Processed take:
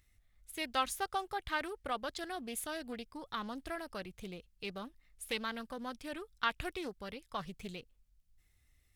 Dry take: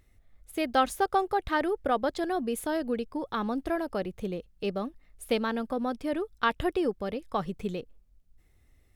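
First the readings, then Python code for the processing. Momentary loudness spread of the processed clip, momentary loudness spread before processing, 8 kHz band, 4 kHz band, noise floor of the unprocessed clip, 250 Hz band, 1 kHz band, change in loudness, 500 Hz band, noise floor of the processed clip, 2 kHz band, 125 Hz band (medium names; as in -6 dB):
12 LU, 9 LU, -1.0 dB, -2.0 dB, -63 dBFS, -13.5 dB, -9.0 dB, -9.5 dB, -13.5 dB, -72 dBFS, -5.0 dB, -10.5 dB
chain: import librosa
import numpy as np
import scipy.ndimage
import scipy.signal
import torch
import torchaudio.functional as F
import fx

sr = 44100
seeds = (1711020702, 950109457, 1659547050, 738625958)

y = fx.tone_stack(x, sr, knobs='5-5-5')
y = fx.doppler_dist(y, sr, depth_ms=0.42)
y = y * librosa.db_to_amplitude(6.0)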